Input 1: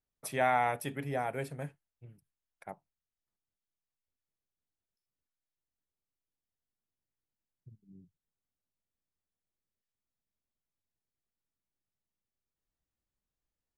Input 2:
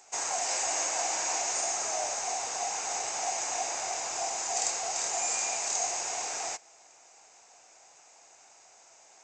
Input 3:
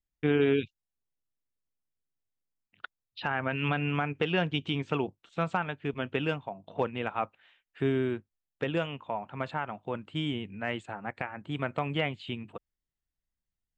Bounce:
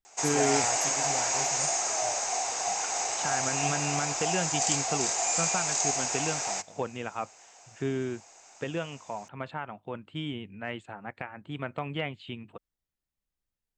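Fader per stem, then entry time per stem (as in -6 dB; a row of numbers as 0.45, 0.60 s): -3.5, +2.5, -3.0 dB; 0.00, 0.05, 0.00 s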